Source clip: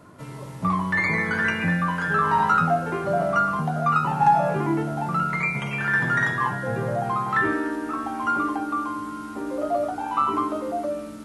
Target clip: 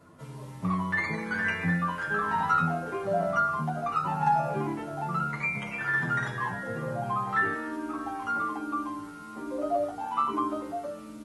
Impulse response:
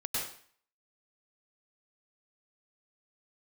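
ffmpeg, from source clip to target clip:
-filter_complex "[0:a]asplit=2[link_01][link_02];[link_02]adelay=8.6,afreqshift=-1.2[link_03];[link_01][link_03]amix=inputs=2:normalize=1,volume=-3dB"

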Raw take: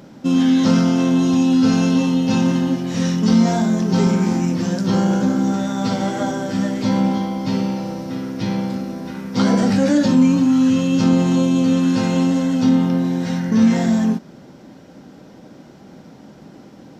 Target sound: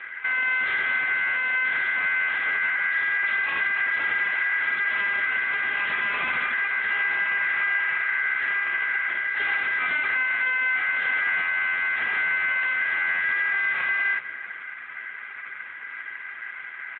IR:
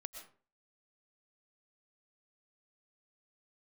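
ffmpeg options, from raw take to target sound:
-filter_complex "[0:a]asuperstop=centerf=2400:order=12:qfactor=1.3,asplit=3[link_01][link_02][link_03];[link_01]afade=type=out:start_time=2.31:duration=0.02[link_04];[link_02]lowshelf=frequency=200:gain=6.5,afade=type=in:start_time=2.31:duration=0.02,afade=type=out:start_time=3.07:duration=0.02[link_05];[link_03]afade=type=in:start_time=3.07:duration=0.02[link_06];[link_04][link_05][link_06]amix=inputs=3:normalize=0,acrossover=split=260|3000[link_07][link_08][link_09];[link_07]acompressor=threshold=-22dB:ratio=4[link_10];[link_10][link_08][link_09]amix=inputs=3:normalize=0,acrossover=split=2000[link_11][link_12];[link_11]alimiter=limit=-17dB:level=0:latency=1:release=53[link_13];[link_13][link_12]amix=inputs=2:normalize=0,equalizer=frequency=84:width_type=o:width=1.4:gain=9,acontrast=75,aeval=exprs='val(0)*sin(2*PI*1800*n/s)':channel_layout=same,asoftclip=type=hard:threshold=-21.5dB,asplit=2[link_14][link_15];[link_15]adelay=453,lowpass=frequency=1900:poles=1,volume=-15dB,asplit=2[link_16][link_17];[link_17]adelay=453,lowpass=frequency=1900:poles=1,volume=0.27,asplit=2[link_18][link_19];[link_19]adelay=453,lowpass=frequency=1900:poles=1,volume=0.27[link_20];[link_14][link_16][link_18][link_20]amix=inputs=4:normalize=0" -ar 8000 -c:a libopencore_amrnb -b:a 10200

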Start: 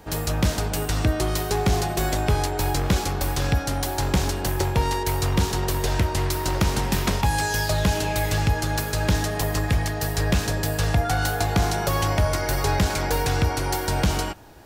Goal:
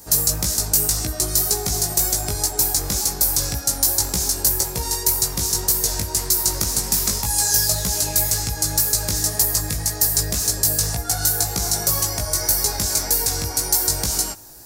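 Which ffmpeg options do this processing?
ffmpeg -i in.wav -af "acompressor=threshold=-24dB:ratio=2,aexciter=amount=9.7:drive=4:freq=4500,flanger=delay=16.5:depth=3.3:speed=1.9" out.wav

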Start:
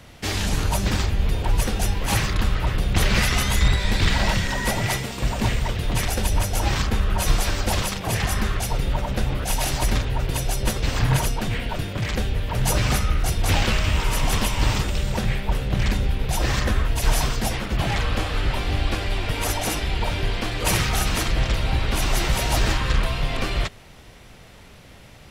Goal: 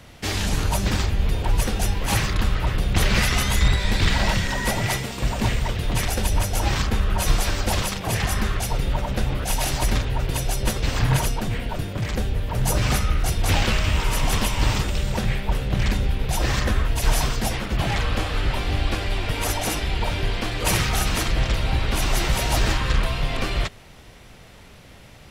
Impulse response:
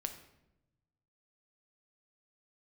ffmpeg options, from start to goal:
-filter_complex "[0:a]asettb=1/sr,asplit=3[link_01][link_02][link_03];[link_01]atrim=end=11.404[link_04];[link_02]atrim=start=11.4:end=12.82,asetpts=PTS-STARTPTS,afade=type=in:duration=0.004:curve=qsin,afade=type=out:start_time=1.416:duration=0.004:curve=qsin,equalizer=frequency=2800:width=0.56:gain=-4[link_05];[link_03]atrim=start=12.816[link_06];[link_04][link_05]acrossfade=duration=0.004:curve1=hsin:curve2=qsin[link_07];[link_07][link_06]acrossfade=duration=0.004:curve1=qsin:curve2=hsin"

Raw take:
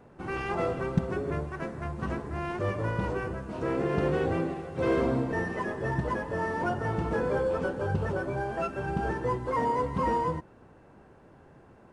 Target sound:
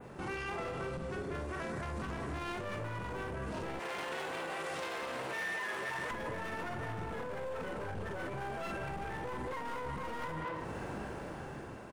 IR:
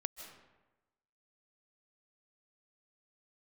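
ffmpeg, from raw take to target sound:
-filter_complex "[0:a]dynaudnorm=framelen=770:gausssize=5:maxgain=11.5dB,aeval=exprs='clip(val(0),-1,0.0531)':channel_layout=same,asplit=2[link_01][link_02];[link_02]adelay=44,volume=-5.5dB[link_03];[link_01][link_03]amix=inputs=2:normalize=0,asplit=2[link_04][link_05];[link_05]adelay=200,highpass=300,lowpass=3400,asoftclip=type=hard:threshold=-13.5dB,volume=-10dB[link_06];[link_04][link_06]amix=inputs=2:normalize=0,adynamicequalizer=threshold=0.00708:dfrequency=5000:dqfactor=0.94:tfrequency=5000:tqfactor=0.94:attack=5:release=100:ratio=0.375:range=2.5:mode=cutabove:tftype=bell,asettb=1/sr,asplit=3[link_07][link_08][link_09];[link_07]atrim=end=3.794[link_10];[link_08]atrim=start=3.79:end=6.11,asetpts=PTS-STARTPTS,afade=type=in:duration=0.004:curve=qsin,afade=type=out:start_time=2.316:duration=0.004:curve=qsin,highpass=frequency=1400:poles=1[link_11];[link_09]atrim=start=6.106[link_12];[link_10][link_11]acrossfade=duration=0.004:curve1=hsin:curve2=qsin[link_13];[link_13][link_12]acrossfade=duration=0.004:curve1=qsin:curve2=hsin,acompressor=threshold=-36dB:ratio=4,alimiter=level_in=12dB:limit=-24dB:level=0:latency=1:release=22,volume=-12dB,highshelf=frequency=2100:gain=8.5,volume=3.5dB"

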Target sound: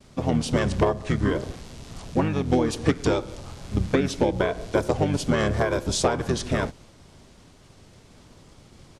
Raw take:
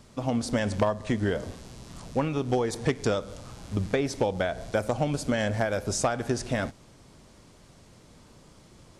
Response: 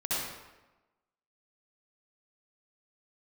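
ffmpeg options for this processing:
-filter_complex "[0:a]agate=range=-33dB:threshold=-51dB:ratio=3:detection=peak,asplit=2[link_01][link_02];[link_02]asetrate=29433,aresample=44100,atempo=1.49831,volume=-1dB[link_03];[link_01][link_03]amix=inputs=2:normalize=0,volume=1.5dB"

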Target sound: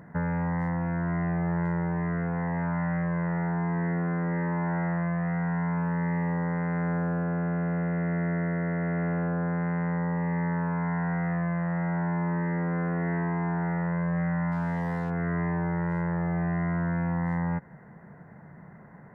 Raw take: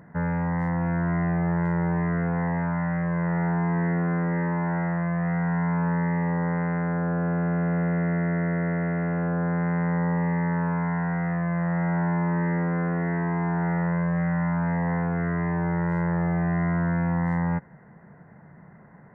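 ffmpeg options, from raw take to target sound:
ffmpeg -i in.wav -filter_complex "[0:a]asettb=1/sr,asplit=3[link_01][link_02][link_03];[link_01]atrim=end=5.774[link_04];[link_02]atrim=start=5.77:end=7.24,asetpts=PTS-STARTPTS,afade=type=in:duration=0.004:curve=qsin,afade=type=out:start_time=1.466:duration=0.004:curve=qsin,bass=frequency=250:gain=1,treble=frequency=4000:gain=14[link_05];[link_03]atrim=start=7.236[link_06];[link_04][link_05]acrossfade=duration=0.004:curve1=hsin:curve2=qsin[link_07];[link_07][link_06]acrossfade=duration=0.004:curve1=qsin:curve2=hsin,acompressor=threshold=-26dB:ratio=6,asplit=3[link_08][link_09][link_10];[link_08]afade=type=out:start_time=14.51:duration=0.02[link_11];[link_09]aeval=exprs='sgn(val(0))*max(abs(val(0))-0.00355,0)':channel_layout=same,afade=type=in:start_time=14.51:duration=0.02,afade=type=out:start_time=15.09:duration=0.02[link_12];[link_10]afade=type=in:start_time=15.09:duration=0.02[link_13];[link_11][link_12][link_13]amix=inputs=3:normalize=0,volume=1dB" out.wav

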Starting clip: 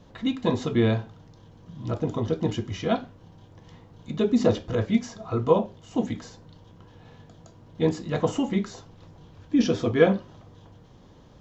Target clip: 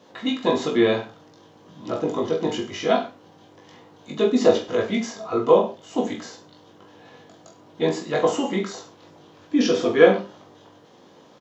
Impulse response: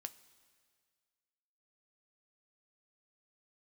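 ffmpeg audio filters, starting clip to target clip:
-af "highpass=310,aecho=1:1:20|43|69.45|99.87|134.8:0.631|0.398|0.251|0.158|0.1,volume=4dB"

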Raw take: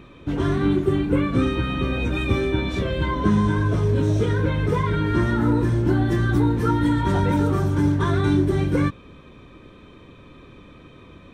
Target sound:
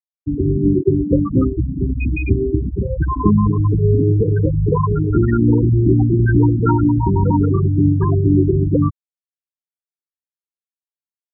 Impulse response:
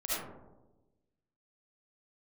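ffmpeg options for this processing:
-af "aecho=1:1:60|120|180:0.168|0.0436|0.0113,afftfilt=real='re*gte(hypot(re,im),0.316)':imag='im*gte(hypot(re,im),0.316)':win_size=1024:overlap=0.75,volume=6dB"

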